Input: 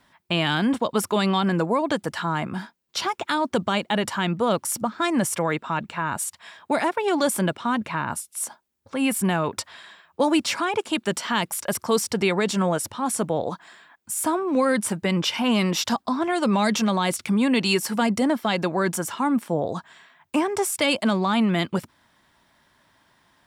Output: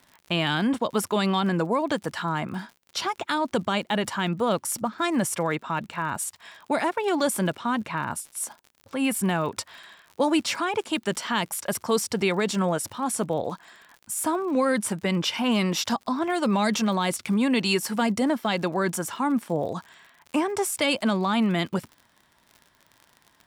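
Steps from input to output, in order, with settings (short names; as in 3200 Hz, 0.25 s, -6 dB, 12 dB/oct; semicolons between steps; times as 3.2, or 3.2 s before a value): crackle 61/s -35 dBFS; gain -2 dB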